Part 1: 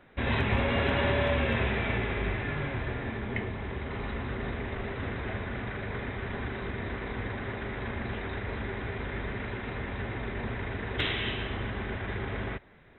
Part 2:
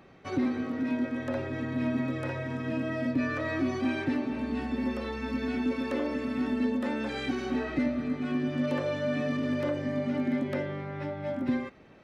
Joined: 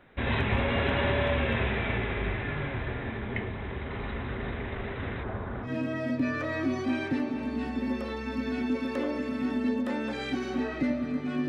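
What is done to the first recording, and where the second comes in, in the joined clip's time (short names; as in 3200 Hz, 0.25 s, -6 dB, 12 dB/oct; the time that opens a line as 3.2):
part 1
5.23–5.7 resonant high shelf 1600 Hz -8.5 dB, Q 1.5
5.66 switch to part 2 from 2.62 s, crossfade 0.08 s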